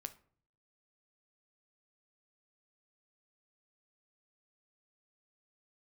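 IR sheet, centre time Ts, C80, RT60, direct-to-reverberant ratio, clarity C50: 5 ms, 21.5 dB, 0.50 s, 9.5 dB, 16.5 dB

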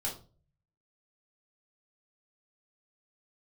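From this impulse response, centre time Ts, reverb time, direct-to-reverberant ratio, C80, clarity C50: 23 ms, 0.40 s, -4.5 dB, 15.0 dB, 8.5 dB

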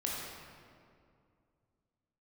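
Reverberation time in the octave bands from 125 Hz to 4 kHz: 3.1 s, 2.8 s, 2.5 s, 2.2 s, 1.8 s, 1.4 s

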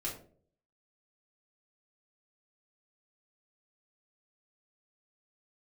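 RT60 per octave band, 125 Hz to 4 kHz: 0.70 s, 0.60 s, 0.65 s, 0.40 s, 0.30 s, 0.25 s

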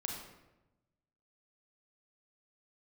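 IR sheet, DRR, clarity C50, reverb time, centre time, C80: 0.5 dB, 3.0 dB, 1.0 s, 47 ms, 5.5 dB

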